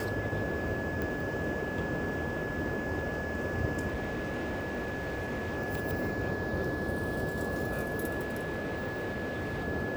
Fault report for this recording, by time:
tone 1700 Hz -38 dBFS
1.02 pop
3.87–5.58 clipped -31 dBFS
8.2–9.66 clipped -31 dBFS

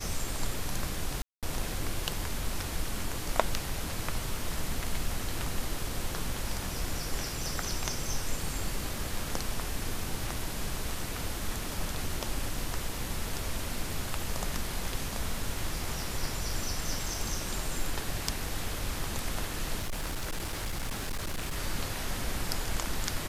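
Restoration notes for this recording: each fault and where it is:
1.22–1.43 gap 0.207 s
19.78–21.57 clipped -29.5 dBFS

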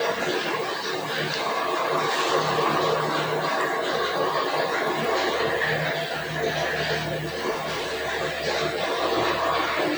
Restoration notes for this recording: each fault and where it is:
7.5–8.02 clipped -25 dBFS

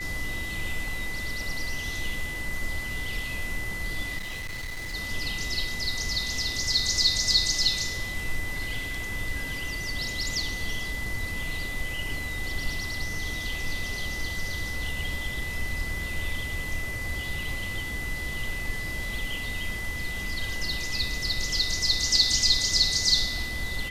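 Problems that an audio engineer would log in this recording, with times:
tone 2000 Hz -33 dBFS
4.17–4.95 clipped -31.5 dBFS

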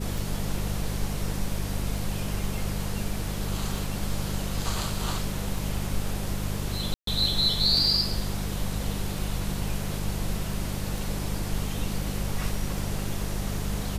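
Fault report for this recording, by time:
hum 50 Hz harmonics 4 -32 dBFS
tick 33 1/3 rpm
6.94–7.07 gap 0.133 s

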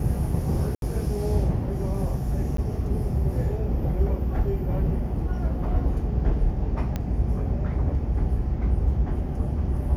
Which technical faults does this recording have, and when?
0.75–0.82 gap 72 ms
2.57–2.58 gap 13 ms
6.96 pop -15 dBFS

